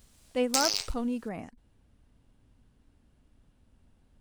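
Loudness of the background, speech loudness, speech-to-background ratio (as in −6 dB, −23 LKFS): −28.5 LKFS, −33.0 LKFS, −4.5 dB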